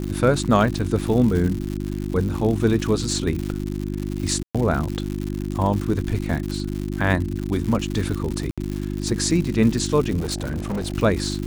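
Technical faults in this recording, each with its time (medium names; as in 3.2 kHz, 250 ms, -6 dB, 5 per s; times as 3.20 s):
crackle 160 per s -26 dBFS
hum 50 Hz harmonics 7 -27 dBFS
0.75 s: dropout 2.2 ms
4.43–4.55 s: dropout 116 ms
8.51–8.58 s: dropout 66 ms
10.19–10.94 s: clipped -22 dBFS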